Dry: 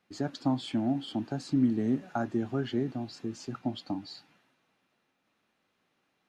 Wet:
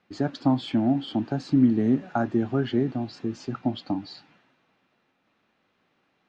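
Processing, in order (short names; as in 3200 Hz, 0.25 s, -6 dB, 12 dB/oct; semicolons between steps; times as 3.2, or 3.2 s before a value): air absorption 120 m; gain +6.5 dB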